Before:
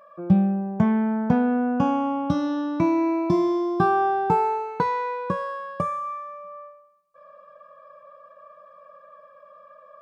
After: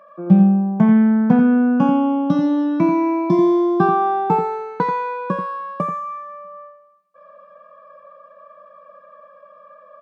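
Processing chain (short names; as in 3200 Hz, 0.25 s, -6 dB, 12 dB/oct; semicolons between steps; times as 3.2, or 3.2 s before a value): HPF 180 Hz 24 dB/oct; tone controls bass +7 dB, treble -7 dB; on a send: echo 86 ms -8 dB; on the sum: gain +3 dB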